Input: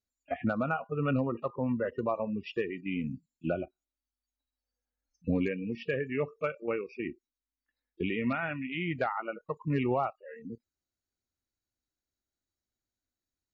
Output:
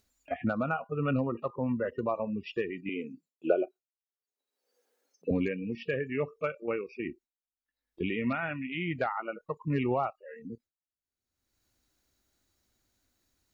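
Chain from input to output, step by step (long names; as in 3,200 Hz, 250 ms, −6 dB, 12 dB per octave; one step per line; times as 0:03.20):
noise gate with hold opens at −58 dBFS
upward compression, threshold −47 dBFS
0:02.89–0:05.31: high-pass with resonance 420 Hz, resonance Q 4.9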